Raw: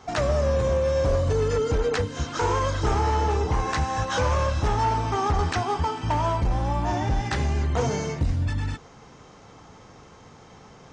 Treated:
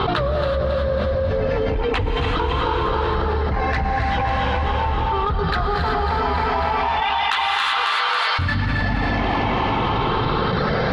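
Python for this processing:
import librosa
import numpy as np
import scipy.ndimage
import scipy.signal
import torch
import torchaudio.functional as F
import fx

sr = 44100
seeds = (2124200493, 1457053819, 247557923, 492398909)

y = fx.spec_ripple(x, sr, per_octave=0.64, drift_hz=0.4, depth_db=9)
y = scipy.signal.sosfilt(scipy.signal.butter(8, 4300.0, 'lowpass', fs=sr, output='sos'), y)
y = fx.dereverb_blind(y, sr, rt60_s=1.1)
y = fx.highpass(y, sr, hz=1000.0, slope=24, at=(6.02, 8.39))
y = fx.rider(y, sr, range_db=5, speed_s=0.5)
y = 10.0 ** (-18.0 / 20.0) * np.tanh(y / 10.0 ** (-18.0 / 20.0))
y = fx.chopper(y, sr, hz=0.57, depth_pct=65, duty_pct=40)
y = fx.echo_feedback(y, sr, ms=272, feedback_pct=50, wet_db=-6.0)
y = fx.rev_gated(y, sr, seeds[0], gate_ms=400, shape='rising', drr_db=1.0)
y = fx.env_flatten(y, sr, amount_pct=100)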